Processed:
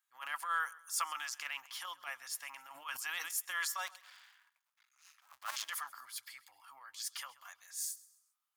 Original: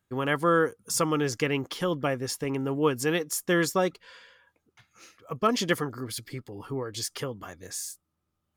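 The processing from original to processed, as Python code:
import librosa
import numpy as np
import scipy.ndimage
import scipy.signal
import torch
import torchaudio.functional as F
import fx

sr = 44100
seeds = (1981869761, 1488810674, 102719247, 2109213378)

y = fx.cycle_switch(x, sr, every=2, mode='muted', at=(3.86, 5.64), fade=0.02)
y = scipy.signal.sosfilt(scipy.signal.cheby2(4, 40, 460.0, 'highpass', fs=sr, output='sos'), y)
y = fx.high_shelf(y, sr, hz=7000.0, db=7.0)
y = fx.transient(y, sr, attack_db=-12, sustain_db=2)
y = fx.echo_feedback(y, sr, ms=132, feedback_pct=37, wet_db=-20.5)
y = fx.sustainer(y, sr, db_per_s=41.0, at=(2.73, 3.34), fade=0.02)
y = y * librosa.db_to_amplitude(-6.0)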